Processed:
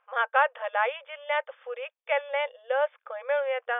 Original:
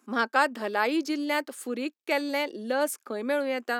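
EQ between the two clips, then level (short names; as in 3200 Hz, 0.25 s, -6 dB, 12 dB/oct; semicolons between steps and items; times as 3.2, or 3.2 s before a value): brick-wall FIR band-pass 470–3600 Hz; air absorption 190 m; +2.0 dB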